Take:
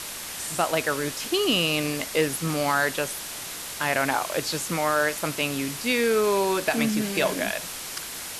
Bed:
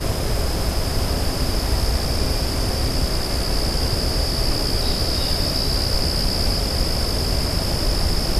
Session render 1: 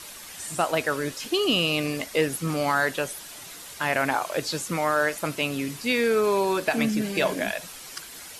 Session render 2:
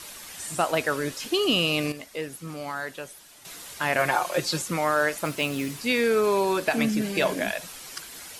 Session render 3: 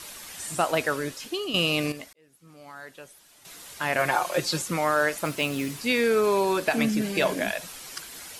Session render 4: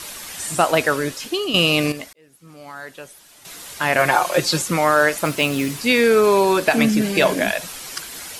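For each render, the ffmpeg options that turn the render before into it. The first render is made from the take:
ffmpeg -i in.wav -af "afftdn=noise_reduction=9:noise_floor=-36" out.wav
ffmpeg -i in.wav -filter_complex "[0:a]asettb=1/sr,asplit=3[link_01][link_02][link_03];[link_01]atrim=end=3.984[link_04];[link_02]atrim=start=3.98:end=4.62,asetpts=PTS-STARTPTS,afade=type=in:duration=0.004:curve=qsin,afade=type=out:start_time=0.636:duration=0.004:curve=qsin,aecho=1:1:5.6:0.72,atrim=end_sample=28224[link_05];[link_03]atrim=start=4.616[link_06];[link_04][link_05]acrossfade=duration=0.004:curve1=hsin:curve2=qsin[link_07];[link_07][link_06]acrossfade=duration=0.004:curve1=qsin:curve2=hsin,asettb=1/sr,asplit=3[link_08][link_09][link_10];[link_08]atrim=end=5.254[link_11];[link_09]atrim=start=5.25:end=5.8,asetpts=PTS-STARTPTS,afade=type=in:duration=0.004:curve=qsin,afade=type=out:start_time=0.546:duration=0.004:curve=qsin,acrusher=bits=5:mode=log:mix=0:aa=0.000001[link_12];[link_10]atrim=start=5.796[link_13];[link_11][link_12]acrossfade=duration=0.004:curve1=hsin:curve2=qsin[link_14];[link_14][link_13]acrossfade=duration=0.004:curve1=qsin:curve2=hsin,asplit=3[link_15][link_16][link_17];[link_15]atrim=end=1.922[link_18];[link_16]atrim=start=1.918:end=3.452,asetpts=PTS-STARTPTS,volume=-9.5dB[link_19];[link_17]atrim=start=3.448[link_20];[link_18][link_19]acrossfade=duration=0.004:curve1=hsin:curve2=hsin[link_21];[link_21][link_20]acrossfade=duration=0.004:curve1=hsin:curve2=hsin" out.wav
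ffmpeg -i in.wav -filter_complex "[0:a]asplit=3[link_01][link_02][link_03];[link_01]atrim=end=1.54,asetpts=PTS-STARTPTS,afade=type=out:start_time=0.85:duration=0.69:silence=0.298538[link_04];[link_02]atrim=start=1.54:end=2.13,asetpts=PTS-STARTPTS,afade=type=in:duration=0.004:curve=hsin:silence=0.298538,afade=type=out:start_time=0.586:duration=0.004:curve=hsin[link_05];[link_03]atrim=start=2.13,asetpts=PTS-STARTPTS,afade=type=in:duration=2.09[link_06];[link_04][link_05][link_06]concat=n=3:v=0:a=1" out.wav
ffmpeg -i in.wav -af "volume=7.5dB" out.wav

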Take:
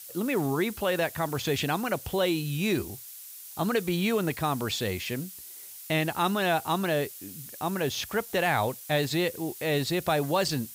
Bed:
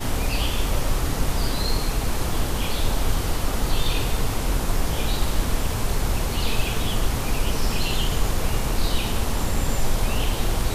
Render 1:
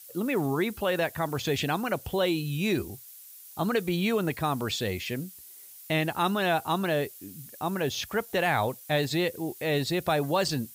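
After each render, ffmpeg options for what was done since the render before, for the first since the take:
ffmpeg -i in.wav -af "afftdn=noise_reduction=6:noise_floor=-45" out.wav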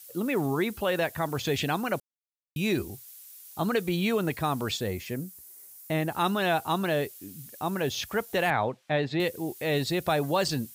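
ffmpeg -i in.wav -filter_complex "[0:a]asettb=1/sr,asplit=3[link_01][link_02][link_03];[link_01]atrim=end=4.774[link_04];[link_02]atrim=start=4.77:end=6.12,asetpts=PTS-STARTPTS,afade=type=in:duration=0.004:curve=qsin,afade=type=out:start_time=1.346:duration=0.004:curve=qsin,equalizer=frequency=3200:width_type=o:width=1.4:gain=-9[link_05];[link_03]atrim=start=6.116[link_06];[link_04][link_05]acrossfade=duration=0.004:curve1=hsin:curve2=qsin[link_07];[link_07][link_06]acrossfade=duration=0.004:curve1=qsin:curve2=hsin,asettb=1/sr,asplit=3[link_08][link_09][link_10];[link_08]atrim=end=8.504[link_11];[link_09]atrim=start=8.5:end=9.2,asetpts=PTS-STARTPTS,afade=type=in:duration=0.004:curve=qsin,afade=type=out:start_time=0.696:duration=0.004:curve=qsin,highpass=110,lowpass=2800[link_12];[link_10]atrim=start=9.196[link_13];[link_11][link_12]acrossfade=duration=0.004:curve1=hsin:curve2=qsin[link_14];[link_14][link_13]acrossfade=duration=0.004:curve1=qsin:curve2=hsin,asplit=3[link_15][link_16][link_17];[link_15]atrim=end=2,asetpts=PTS-STARTPTS,afade=type=out:start_time=1.996:duration=0.004:curve=hsin[link_18];[link_16]atrim=start=2:end=2.56,asetpts=PTS-STARTPTS,volume=0[link_19];[link_17]atrim=start=2.56,asetpts=PTS-STARTPTS,afade=type=in:duration=0.004:curve=hsin[link_20];[link_18][link_19][link_20]concat=n=3:v=0:a=1" out.wav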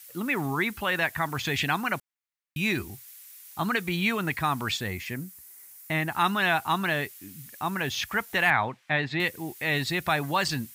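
ffmpeg -i in.wav -af "equalizer=frequency=500:width_type=o:width=1:gain=-9,equalizer=frequency=1000:width_type=o:width=1:gain=4,equalizer=frequency=2000:width_type=o:width=1:gain=8" out.wav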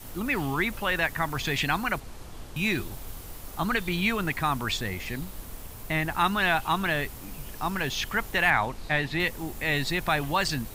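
ffmpeg -i in.wav -i bed.wav -filter_complex "[1:a]volume=-18.5dB[link_01];[0:a][link_01]amix=inputs=2:normalize=0" out.wav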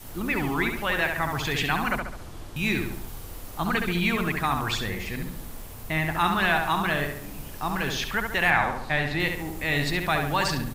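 ffmpeg -i in.wav -filter_complex "[0:a]asplit=2[link_01][link_02];[link_02]adelay=69,lowpass=frequency=2700:poles=1,volume=-4dB,asplit=2[link_03][link_04];[link_04]adelay=69,lowpass=frequency=2700:poles=1,volume=0.51,asplit=2[link_05][link_06];[link_06]adelay=69,lowpass=frequency=2700:poles=1,volume=0.51,asplit=2[link_07][link_08];[link_08]adelay=69,lowpass=frequency=2700:poles=1,volume=0.51,asplit=2[link_09][link_10];[link_10]adelay=69,lowpass=frequency=2700:poles=1,volume=0.51,asplit=2[link_11][link_12];[link_12]adelay=69,lowpass=frequency=2700:poles=1,volume=0.51,asplit=2[link_13][link_14];[link_14]adelay=69,lowpass=frequency=2700:poles=1,volume=0.51[link_15];[link_01][link_03][link_05][link_07][link_09][link_11][link_13][link_15]amix=inputs=8:normalize=0" out.wav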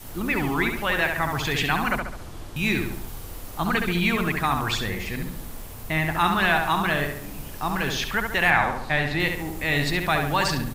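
ffmpeg -i in.wav -af "volume=2dB" out.wav

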